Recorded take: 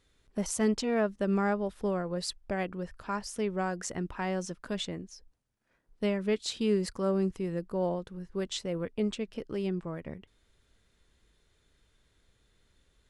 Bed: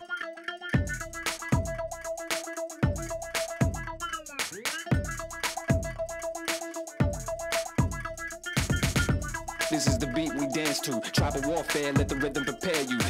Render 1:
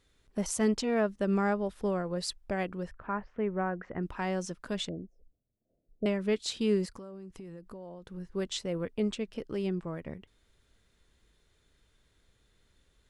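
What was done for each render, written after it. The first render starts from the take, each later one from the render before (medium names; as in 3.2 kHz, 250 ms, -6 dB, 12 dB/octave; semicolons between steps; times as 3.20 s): 2.91–4.03 s: low-pass 2.1 kHz 24 dB/octave; 4.89–6.06 s: elliptic low-pass 680 Hz; 6.85–8.10 s: compression 12:1, threshold -41 dBFS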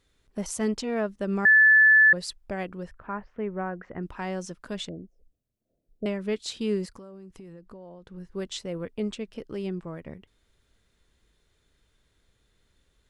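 1.45–2.13 s: bleep 1.74 kHz -13 dBFS; 7.53–8.18 s: distance through air 52 m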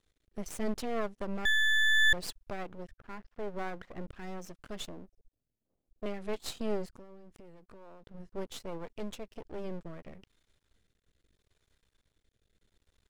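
rotary cabinet horn 0.75 Hz; half-wave rectifier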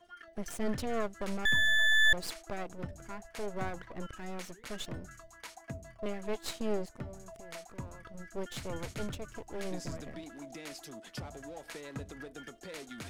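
add bed -17 dB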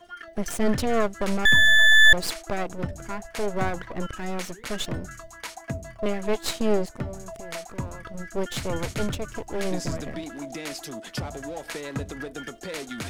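trim +10.5 dB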